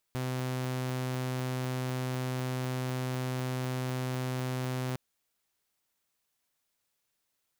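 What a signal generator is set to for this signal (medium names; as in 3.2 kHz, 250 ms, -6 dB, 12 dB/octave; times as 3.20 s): tone saw 128 Hz -28.5 dBFS 4.81 s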